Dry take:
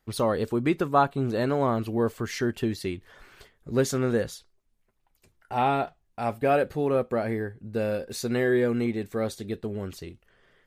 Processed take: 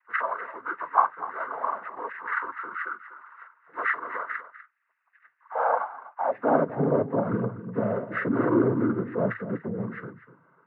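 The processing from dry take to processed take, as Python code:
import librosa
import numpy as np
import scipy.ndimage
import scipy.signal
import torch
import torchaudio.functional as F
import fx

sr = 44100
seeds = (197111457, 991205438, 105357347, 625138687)

p1 = fx.freq_compress(x, sr, knee_hz=1000.0, ratio=4.0)
p2 = fx.noise_vocoder(p1, sr, seeds[0], bands=16)
p3 = fx.filter_sweep_highpass(p2, sr, from_hz=1200.0, to_hz=150.0, start_s=6.11, end_s=6.67, q=1.7)
p4 = p3 + fx.echo_single(p3, sr, ms=247, db=-14.5, dry=0)
y = fx.spec_paint(p4, sr, seeds[1], shape='noise', start_s=5.55, length_s=0.24, low_hz=460.0, high_hz=940.0, level_db=-26.0)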